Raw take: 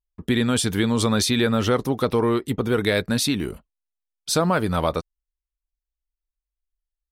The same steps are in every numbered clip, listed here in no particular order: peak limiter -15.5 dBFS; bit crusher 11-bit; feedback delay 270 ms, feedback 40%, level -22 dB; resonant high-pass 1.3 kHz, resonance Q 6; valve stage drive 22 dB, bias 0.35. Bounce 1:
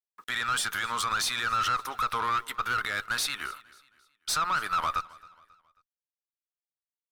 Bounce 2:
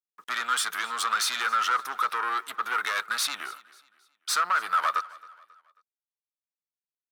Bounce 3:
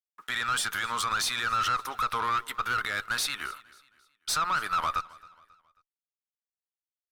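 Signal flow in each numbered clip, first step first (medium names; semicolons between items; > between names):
resonant high-pass > peak limiter > valve stage > bit crusher > feedback delay; valve stage > resonant high-pass > bit crusher > feedback delay > peak limiter; bit crusher > resonant high-pass > peak limiter > valve stage > feedback delay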